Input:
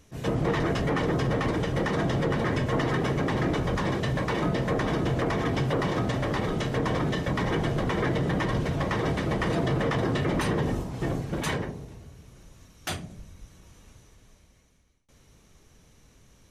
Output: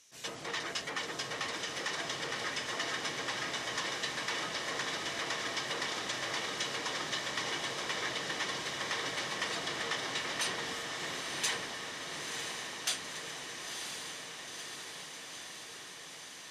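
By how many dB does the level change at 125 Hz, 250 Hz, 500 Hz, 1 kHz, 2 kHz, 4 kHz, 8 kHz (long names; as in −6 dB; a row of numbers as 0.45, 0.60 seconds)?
−25.0, −19.5, −14.0, −7.5, −2.0, +4.0, +7.0 decibels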